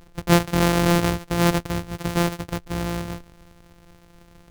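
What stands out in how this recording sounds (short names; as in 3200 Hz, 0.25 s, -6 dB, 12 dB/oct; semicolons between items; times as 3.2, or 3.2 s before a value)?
a buzz of ramps at a fixed pitch in blocks of 256 samples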